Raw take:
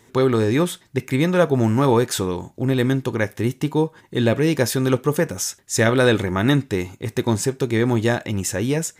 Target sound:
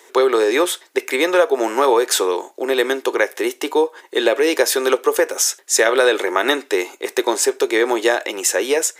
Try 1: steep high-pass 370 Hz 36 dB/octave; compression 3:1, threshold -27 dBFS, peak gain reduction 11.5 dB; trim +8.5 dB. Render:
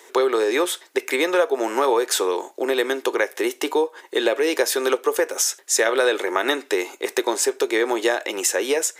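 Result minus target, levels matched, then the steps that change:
compression: peak gain reduction +4.5 dB
change: compression 3:1, threshold -20.5 dBFS, peak gain reduction 7 dB

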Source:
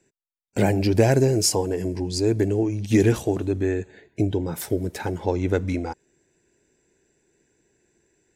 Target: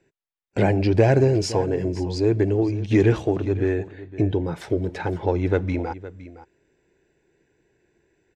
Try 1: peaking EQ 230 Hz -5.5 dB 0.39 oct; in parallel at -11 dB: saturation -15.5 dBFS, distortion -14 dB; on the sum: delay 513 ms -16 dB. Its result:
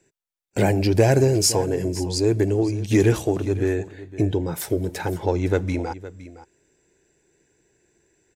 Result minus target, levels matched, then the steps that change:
4 kHz band +6.5 dB
add first: low-pass 3.4 kHz 12 dB/octave

